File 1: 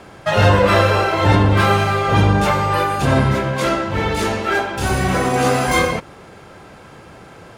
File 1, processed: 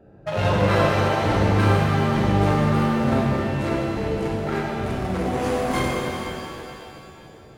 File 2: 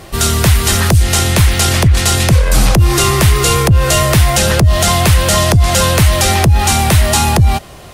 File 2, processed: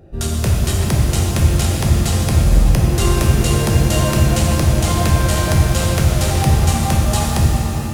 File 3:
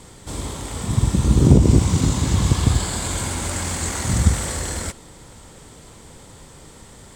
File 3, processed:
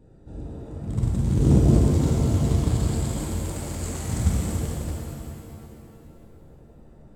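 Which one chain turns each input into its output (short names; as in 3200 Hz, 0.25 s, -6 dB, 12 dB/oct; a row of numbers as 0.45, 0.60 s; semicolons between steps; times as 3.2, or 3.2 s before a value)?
Wiener smoothing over 41 samples; shimmer reverb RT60 2.7 s, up +7 st, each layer -8 dB, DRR -2.5 dB; gain -8 dB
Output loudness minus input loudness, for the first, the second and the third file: -5.5, -5.0, -4.0 LU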